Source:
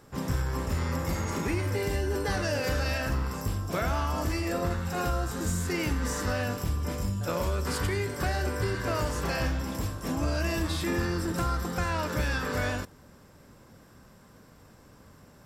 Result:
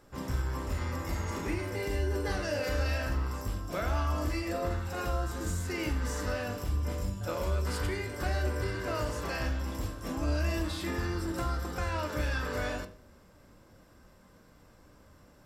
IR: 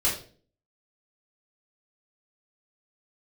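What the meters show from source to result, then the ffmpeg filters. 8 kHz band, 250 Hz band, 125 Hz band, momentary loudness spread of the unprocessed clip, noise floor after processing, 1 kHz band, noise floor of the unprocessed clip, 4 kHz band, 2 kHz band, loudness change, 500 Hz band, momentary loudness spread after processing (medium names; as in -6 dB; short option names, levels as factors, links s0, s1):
-6.0 dB, -4.5 dB, -3.0 dB, 3 LU, -59 dBFS, -4.0 dB, -55 dBFS, -4.5 dB, -4.0 dB, -3.5 dB, -3.0 dB, 4 LU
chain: -filter_complex "[0:a]asplit=2[s0][s1];[s1]lowpass=5800[s2];[1:a]atrim=start_sample=2205[s3];[s2][s3]afir=irnorm=-1:irlink=0,volume=0.178[s4];[s0][s4]amix=inputs=2:normalize=0,volume=0.501"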